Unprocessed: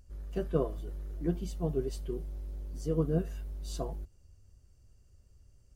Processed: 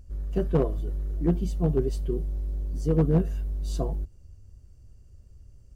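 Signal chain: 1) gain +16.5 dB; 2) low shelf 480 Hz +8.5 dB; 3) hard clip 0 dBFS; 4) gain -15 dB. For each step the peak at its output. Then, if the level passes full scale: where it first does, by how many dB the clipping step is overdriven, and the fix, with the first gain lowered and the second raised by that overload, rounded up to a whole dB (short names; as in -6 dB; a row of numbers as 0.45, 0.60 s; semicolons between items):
+0.5, +6.5, 0.0, -15.0 dBFS; step 1, 6.5 dB; step 1 +9.5 dB, step 4 -8 dB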